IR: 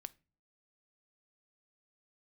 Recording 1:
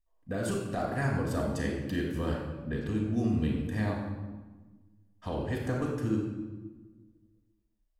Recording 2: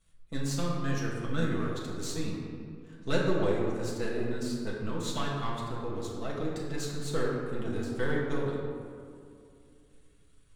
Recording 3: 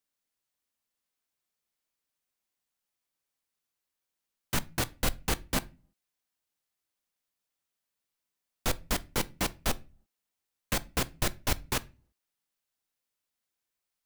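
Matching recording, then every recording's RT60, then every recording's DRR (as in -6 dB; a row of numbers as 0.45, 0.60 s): 3; 1.3 s, 2.5 s, not exponential; -2.0, -5.0, 14.5 dB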